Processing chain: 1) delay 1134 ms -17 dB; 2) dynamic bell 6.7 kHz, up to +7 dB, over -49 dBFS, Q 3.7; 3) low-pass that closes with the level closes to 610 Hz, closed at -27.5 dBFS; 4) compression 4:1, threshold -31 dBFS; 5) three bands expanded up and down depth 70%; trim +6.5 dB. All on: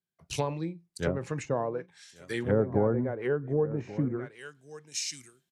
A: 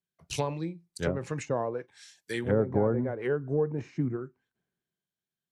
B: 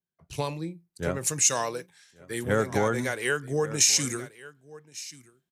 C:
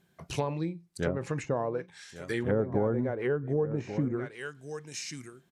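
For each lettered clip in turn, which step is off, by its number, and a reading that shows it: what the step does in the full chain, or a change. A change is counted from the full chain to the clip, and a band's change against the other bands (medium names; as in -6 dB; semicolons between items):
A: 1, momentary loudness spread change -7 LU; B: 3, 4 kHz band +11.0 dB; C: 5, 4 kHz band -3.5 dB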